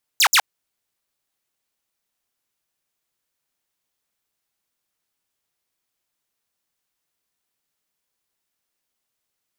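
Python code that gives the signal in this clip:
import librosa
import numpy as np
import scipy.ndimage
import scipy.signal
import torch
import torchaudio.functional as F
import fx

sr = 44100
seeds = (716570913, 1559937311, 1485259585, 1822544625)

y = fx.laser_zaps(sr, level_db=-9, start_hz=8000.0, end_hz=680.0, length_s=0.07, wave='saw', shots=2, gap_s=0.06)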